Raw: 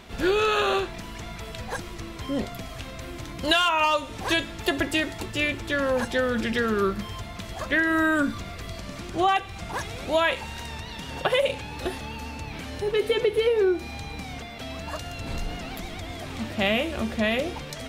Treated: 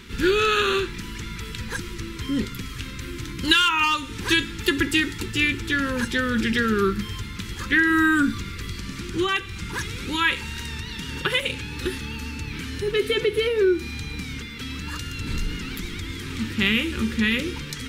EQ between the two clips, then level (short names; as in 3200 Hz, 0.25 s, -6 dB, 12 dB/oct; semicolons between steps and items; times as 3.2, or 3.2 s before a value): Butterworth band-stop 670 Hz, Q 0.98; notch 1100 Hz, Q 8.1; +4.5 dB